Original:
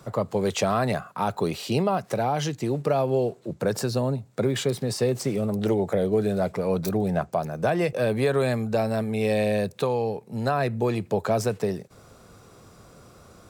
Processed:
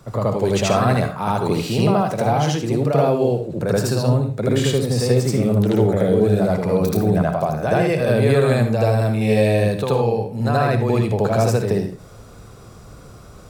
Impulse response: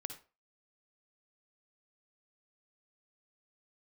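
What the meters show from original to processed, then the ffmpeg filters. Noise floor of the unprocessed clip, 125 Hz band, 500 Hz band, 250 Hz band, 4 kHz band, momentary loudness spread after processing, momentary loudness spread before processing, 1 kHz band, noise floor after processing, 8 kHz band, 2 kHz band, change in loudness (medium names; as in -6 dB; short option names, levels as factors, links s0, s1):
-53 dBFS, +10.0 dB, +6.0 dB, +7.0 dB, +5.5 dB, 4 LU, 5 LU, +6.0 dB, -42 dBFS, +5.5 dB, +5.5 dB, +7.0 dB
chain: -filter_complex "[0:a]lowshelf=f=87:g=11.5,asplit=2[s0][s1];[1:a]atrim=start_sample=2205,adelay=79[s2];[s1][s2]afir=irnorm=-1:irlink=0,volume=2.11[s3];[s0][s3]amix=inputs=2:normalize=0"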